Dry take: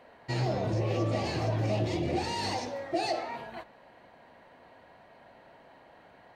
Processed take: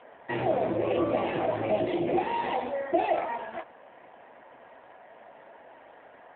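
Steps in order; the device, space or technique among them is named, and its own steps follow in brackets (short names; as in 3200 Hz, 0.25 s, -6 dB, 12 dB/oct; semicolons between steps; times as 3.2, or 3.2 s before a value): 1.51–3.16 dynamic EQ 300 Hz, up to -3 dB, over -48 dBFS, Q 5.8; telephone (BPF 270–3200 Hz; gain +7 dB; AMR-NB 7.4 kbps 8000 Hz)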